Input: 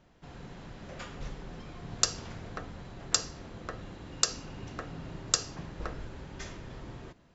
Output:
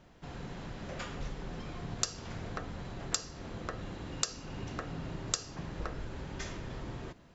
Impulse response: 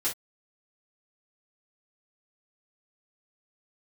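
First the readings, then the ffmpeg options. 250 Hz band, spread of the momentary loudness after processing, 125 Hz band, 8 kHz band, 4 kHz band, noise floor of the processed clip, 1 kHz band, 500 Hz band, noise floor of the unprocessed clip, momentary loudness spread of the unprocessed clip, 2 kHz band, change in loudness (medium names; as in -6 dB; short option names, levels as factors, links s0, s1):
+1.5 dB, 8 LU, +1.5 dB, no reading, -6.0 dB, -58 dBFS, -1.0 dB, +0.5 dB, -62 dBFS, 17 LU, -1.5 dB, -4.5 dB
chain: -af "acompressor=threshold=0.01:ratio=2,volume=1.5"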